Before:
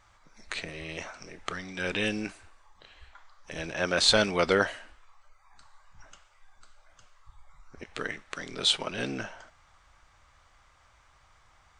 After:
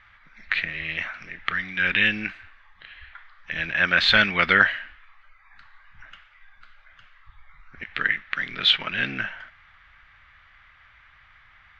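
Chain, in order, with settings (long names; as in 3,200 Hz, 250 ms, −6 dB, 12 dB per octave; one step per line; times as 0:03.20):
drawn EQ curve 200 Hz 0 dB, 430 Hz −9 dB, 970 Hz −3 dB, 1,800 Hz +13 dB, 3,500 Hz +4 dB, 8,800 Hz −29 dB
level +2.5 dB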